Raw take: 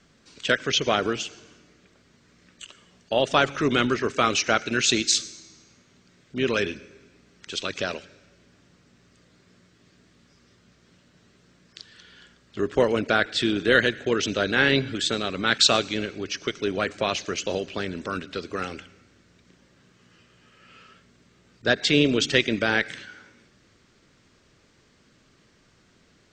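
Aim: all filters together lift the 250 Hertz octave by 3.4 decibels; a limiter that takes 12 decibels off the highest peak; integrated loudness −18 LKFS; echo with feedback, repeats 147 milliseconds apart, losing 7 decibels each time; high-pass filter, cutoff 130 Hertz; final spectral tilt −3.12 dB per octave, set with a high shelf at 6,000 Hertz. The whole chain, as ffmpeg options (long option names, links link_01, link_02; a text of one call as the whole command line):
ffmpeg -i in.wav -af "highpass=130,equalizer=frequency=250:width_type=o:gain=4.5,highshelf=frequency=6000:gain=3,alimiter=limit=-14.5dB:level=0:latency=1,aecho=1:1:147|294|441|588|735:0.447|0.201|0.0905|0.0407|0.0183,volume=8dB" out.wav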